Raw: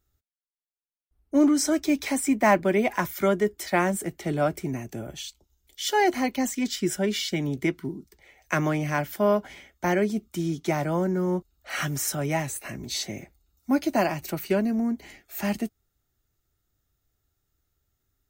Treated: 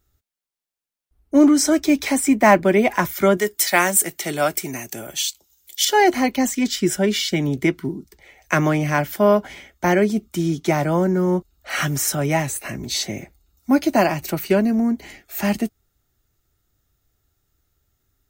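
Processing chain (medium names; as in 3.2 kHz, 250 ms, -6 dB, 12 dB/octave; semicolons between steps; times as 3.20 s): 3.37–5.85 s: tilt EQ +3.5 dB/octave; trim +6.5 dB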